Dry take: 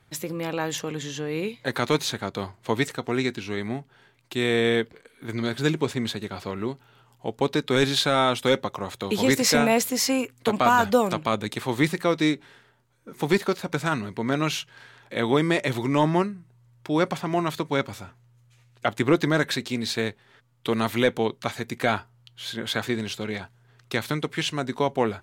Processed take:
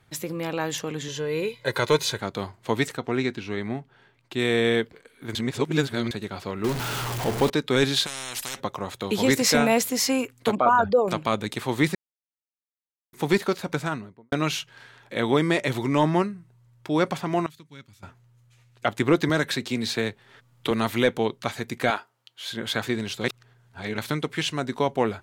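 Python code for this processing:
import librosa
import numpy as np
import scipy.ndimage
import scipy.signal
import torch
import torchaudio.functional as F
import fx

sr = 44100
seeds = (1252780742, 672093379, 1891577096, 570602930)

y = fx.comb(x, sr, ms=2.0, depth=0.63, at=(1.08, 2.2))
y = fx.high_shelf(y, sr, hz=6500.0, db=-11.5, at=(2.97, 4.39))
y = fx.zero_step(y, sr, step_db=-23.5, at=(6.64, 7.5))
y = fx.spectral_comp(y, sr, ratio=10.0, at=(8.05, 8.59), fade=0.02)
y = fx.envelope_sharpen(y, sr, power=2.0, at=(10.55, 11.08))
y = fx.studio_fade_out(y, sr, start_s=13.69, length_s=0.63)
y = fx.tone_stack(y, sr, knobs='6-0-2', at=(17.46, 18.03))
y = fx.band_squash(y, sr, depth_pct=40, at=(19.29, 20.71))
y = fx.highpass(y, sr, hz=380.0, slope=12, at=(21.9, 22.52))
y = fx.edit(y, sr, fx.reverse_span(start_s=5.35, length_s=0.76),
    fx.silence(start_s=11.95, length_s=1.18),
    fx.reverse_span(start_s=23.24, length_s=0.74), tone=tone)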